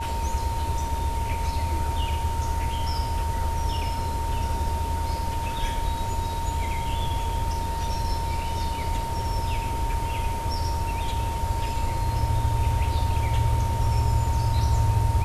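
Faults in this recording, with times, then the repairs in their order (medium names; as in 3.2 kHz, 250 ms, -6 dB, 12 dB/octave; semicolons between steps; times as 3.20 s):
whine 920 Hz -30 dBFS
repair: band-stop 920 Hz, Q 30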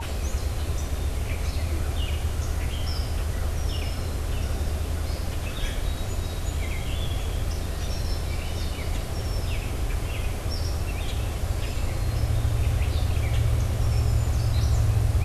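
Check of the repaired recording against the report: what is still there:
nothing left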